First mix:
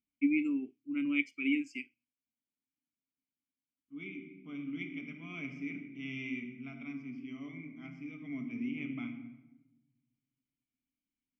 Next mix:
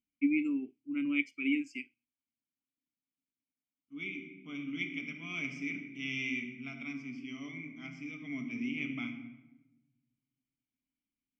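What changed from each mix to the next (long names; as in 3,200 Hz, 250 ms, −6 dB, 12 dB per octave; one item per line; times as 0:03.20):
second voice: remove low-pass filter 1,200 Hz 6 dB per octave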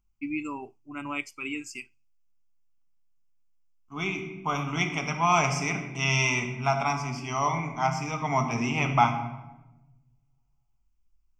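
first voice −9.0 dB
master: remove formant filter i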